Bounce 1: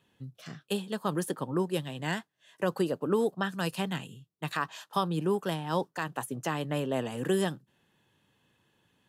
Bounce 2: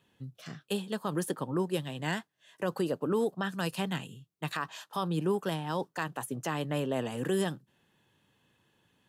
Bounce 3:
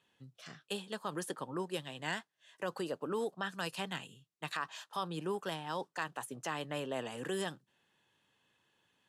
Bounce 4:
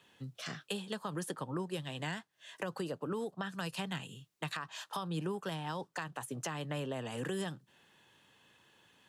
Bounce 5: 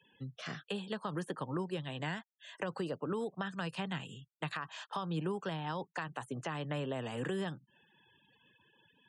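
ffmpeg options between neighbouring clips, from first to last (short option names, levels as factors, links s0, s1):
-af "alimiter=limit=0.0944:level=0:latency=1:release=56"
-af "lowpass=10000,lowshelf=f=380:g=-11,volume=0.794"
-filter_complex "[0:a]acrossover=split=160[s0][s1];[s1]acompressor=threshold=0.00447:ratio=6[s2];[s0][s2]amix=inputs=2:normalize=0,volume=2.99"
-filter_complex "[0:a]acrossover=split=3300[s0][s1];[s1]acompressor=threshold=0.00224:ratio=4:attack=1:release=60[s2];[s0][s2]amix=inputs=2:normalize=0,afftfilt=real='re*gte(hypot(re,im),0.00112)':imag='im*gte(hypot(re,im),0.00112)':win_size=1024:overlap=0.75,aresample=22050,aresample=44100,volume=1.12"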